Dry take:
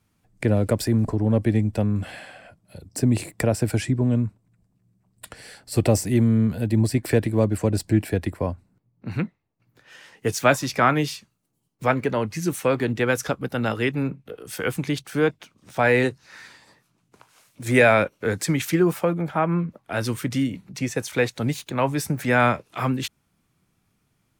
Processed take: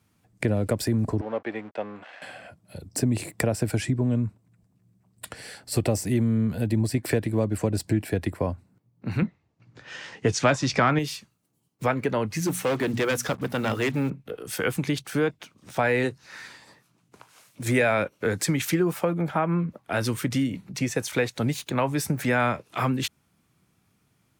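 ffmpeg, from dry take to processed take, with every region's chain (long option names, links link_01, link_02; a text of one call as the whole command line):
ffmpeg -i in.wav -filter_complex "[0:a]asettb=1/sr,asplit=3[link_01][link_02][link_03];[link_01]atrim=end=1.214[link_04];[link_02]atrim=start=1.21:end=2.22,asetpts=PTS-STARTPTS,afade=type=in:duration=0.004:curve=qsin,afade=type=out:start_time=1.006:duration=0.004:curve=qsin,aeval=exprs='sgn(val(0))*max(abs(val(0))-0.00841,0)':channel_layout=same,highpass=610,lowpass=2500[link_05];[link_03]atrim=start=2.216[link_06];[link_04][link_05]acrossfade=duration=0.004:curve1=hsin:curve2=qsin[link_07];[link_07][link_06]acrossfade=duration=0.004:curve1=qsin:curve2=hsin,asettb=1/sr,asplit=3[link_08][link_09][link_10];[link_08]atrim=end=9.224[link_11];[link_09]atrim=start=9.22:end=10.99,asetpts=PTS-STARTPTS,afade=type=in:duration=0.004:curve=qsin,afade=type=out:start_time=1.766:duration=0.004:curve=qsin,lowpass=frequency=7200:width=0.5412,lowpass=frequency=7200:width=1.3066,lowshelf=frequency=140:gain=6,acontrast=36[link_12];[link_10]atrim=start=10.986[link_13];[link_11][link_12]acrossfade=duration=0.004:curve1=hsin:curve2=qsin[link_14];[link_14][link_13]acrossfade=duration=0.004:curve1=qsin:curve2=hsin,asettb=1/sr,asplit=3[link_15][link_16][link_17];[link_15]atrim=end=12.374[link_18];[link_16]atrim=start=12.37:end=14.1,asetpts=PTS-STARTPTS,afade=type=in:duration=0.004:curve=qsin,afade=type=out:start_time=1.726:duration=0.004:curve=qsin,bandreject=frequency=60:width_type=h:width=6,bandreject=frequency=120:width_type=h:width=6,bandreject=frequency=180:width_type=h:width=6,bandreject=frequency=240:width_type=h:width=6,acrusher=bits=7:mix=0:aa=0.5,volume=20.5dB,asoftclip=hard,volume=-20.5dB[link_19];[link_17]atrim=start=14.096[link_20];[link_18][link_19]acrossfade=duration=0.004:curve1=hsin:curve2=qsin[link_21];[link_21][link_20]acrossfade=duration=0.004:curve1=qsin:curve2=hsin,highpass=60,acompressor=threshold=-24dB:ratio=2.5,volume=2dB" out.wav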